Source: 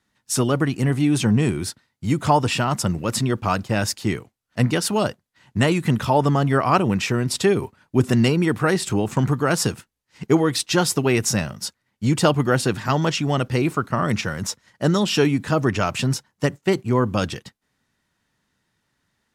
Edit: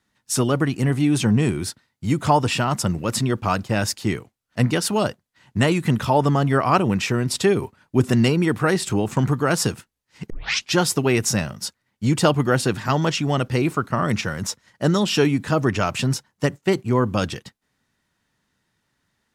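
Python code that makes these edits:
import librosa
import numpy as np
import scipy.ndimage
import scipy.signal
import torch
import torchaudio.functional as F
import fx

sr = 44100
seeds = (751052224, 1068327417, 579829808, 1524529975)

y = fx.edit(x, sr, fx.tape_start(start_s=10.3, length_s=0.43), tone=tone)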